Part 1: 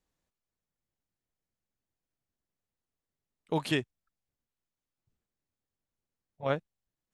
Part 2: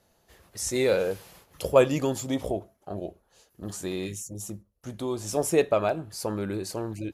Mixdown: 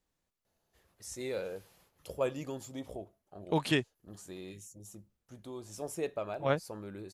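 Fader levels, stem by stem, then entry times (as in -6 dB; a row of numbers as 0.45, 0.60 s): +0.5, -13.5 dB; 0.00, 0.45 s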